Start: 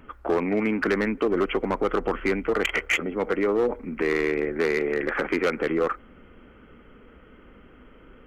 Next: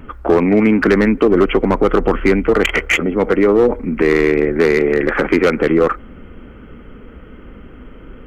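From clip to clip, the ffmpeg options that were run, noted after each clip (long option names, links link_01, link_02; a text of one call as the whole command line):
ffmpeg -i in.wav -af "lowshelf=frequency=310:gain=8,volume=8dB" out.wav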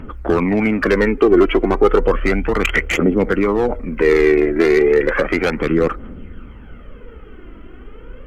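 ffmpeg -i in.wav -af "aphaser=in_gain=1:out_gain=1:delay=3.1:decay=0.54:speed=0.33:type=triangular,volume=-2.5dB" out.wav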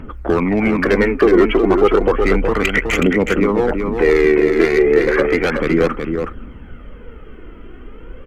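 ffmpeg -i in.wav -af "aecho=1:1:370:0.531" out.wav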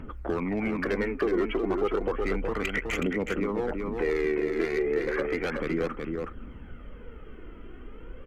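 ffmpeg -i in.wav -af "acompressor=threshold=-28dB:ratio=1.5,volume=-7.5dB" out.wav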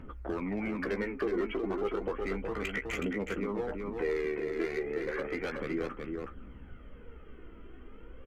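ffmpeg -i in.wav -filter_complex "[0:a]asplit=2[link_01][link_02];[link_02]adelay=15,volume=-8dB[link_03];[link_01][link_03]amix=inputs=2:normalize=0,volume=-6dB" out.wav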